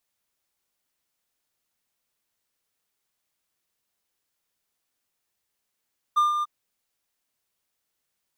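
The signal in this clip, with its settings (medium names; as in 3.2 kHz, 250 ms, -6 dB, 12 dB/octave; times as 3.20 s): ADSR triangle 1.2 kHz, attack 17 ms, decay 149 ms, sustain -7 dB, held 0.27 s, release 26 ms -14 dBFS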